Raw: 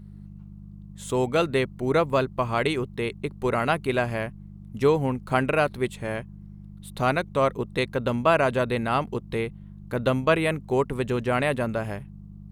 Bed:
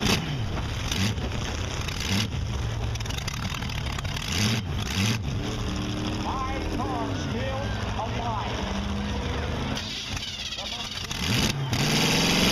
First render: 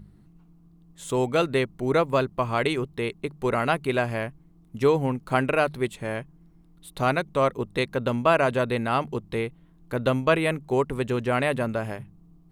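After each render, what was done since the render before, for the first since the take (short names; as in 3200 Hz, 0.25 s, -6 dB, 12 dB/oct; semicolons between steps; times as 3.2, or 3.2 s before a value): de-hum 50 Hz, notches 4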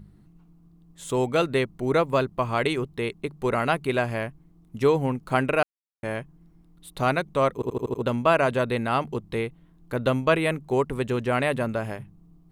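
5.63–6.03 mute; 7.54 stutter in place 0.08 s, 6 plays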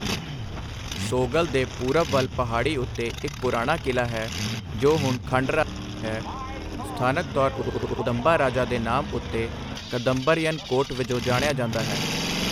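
add bed -4.5 dB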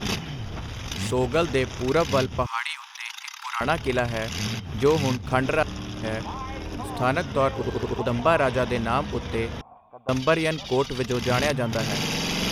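2.46–3.61 steep high-pass 830 Hz 96 dB/oct; 9.61–10.09 vocal tract filter a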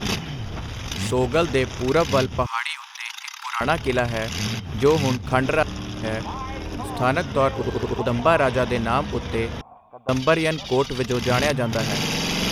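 gain +2.5 dB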